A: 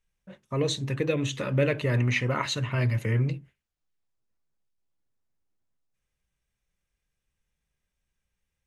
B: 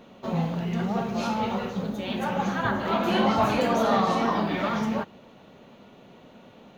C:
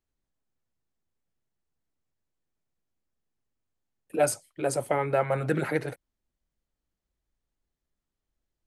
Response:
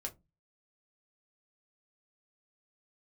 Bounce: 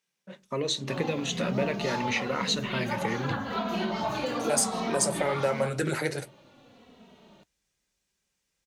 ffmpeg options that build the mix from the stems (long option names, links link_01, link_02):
-filter_complex "[0:a]highpass=frequency=170:width=0.5412,highpass=frequency=170:width=1.3066,acompressor=threshold=-31dB:ratio=3,volume=0.5dB,asplit=2[link_01][link_02];[link_02]volume=-8dB[link_03];[1:a]asplit=2[link_04][link_05];[link_05]adelay=2.8,afreqshift=-0.9[link_06];[link_04][link_06]amix=inputs=2:normalize=1,adelay=650,volume=2dB[link_07];[2:a]highpass=43,equalizer=frequency=7200:width=0.83:gain=12.5,asoftclip=type=tanh:threshold=-9.5dB,adelay=300,volume=0.5dB,asplit=2[link_08][link_09];[link_09]volume=-8.5dB[link_10];[link_07][link_08]amix=inputs=2:normalize=0,flanger=delay=3:depth=8.9:regen=-67:speed=1.9:shape=sinusoidal,acompressor=threshold=-26dB:ratio=6,volume=0dB[link_11];[3:a]atrim=start_sample=2205[link_12];[link_03][link_10]amix=inputs=2:normalize=0[link_13];[link_13][link_12]afir=irnorm=-1:irlink=0[link_14];[link_01][link_11][link_14]amix=inputs=3:normalize=0,equalizer=frequency=4800:width_type=o:width=1.1:gain=6"